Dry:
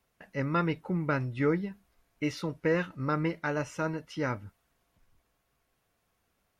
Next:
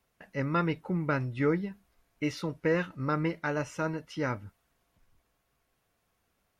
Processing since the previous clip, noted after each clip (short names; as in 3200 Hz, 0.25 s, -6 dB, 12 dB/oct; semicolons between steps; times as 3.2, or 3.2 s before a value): nothing audible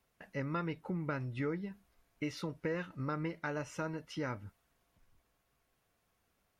compressor 2.5:1, threshold -34 dBFS, peak gain reduction 8.5 dB; gain -2 dB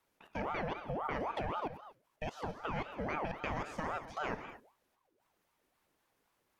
level quantiser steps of 21 dB; non-linear reverb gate 0.27 s flat, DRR 8 dB; ring modulator with a swept carrier 690 Hz, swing 55%, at 3.8 Hz; gain +8 dB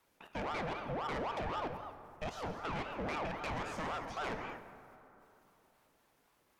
soft clip -38.5 dBFS, distortion -8 dB; plate-style reverb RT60 3.3 s, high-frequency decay 0.45×, DRR 10.5 dB; gain +4.5 dB